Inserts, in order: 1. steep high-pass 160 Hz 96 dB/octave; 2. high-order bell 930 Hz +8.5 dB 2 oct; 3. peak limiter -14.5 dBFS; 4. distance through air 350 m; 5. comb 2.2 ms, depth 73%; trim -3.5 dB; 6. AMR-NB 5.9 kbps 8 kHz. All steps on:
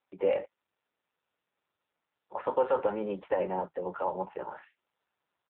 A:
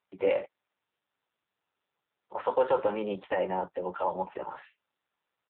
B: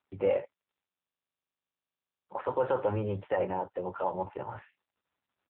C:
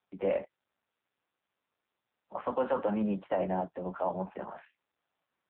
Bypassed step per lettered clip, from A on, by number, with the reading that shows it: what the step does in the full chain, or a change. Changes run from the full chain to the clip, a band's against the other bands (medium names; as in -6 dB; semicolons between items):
4, 2 kHz band +3.5 dB; 1, 125 Hz band +10.0 dB; 5, 125 Hz band +8.0 dB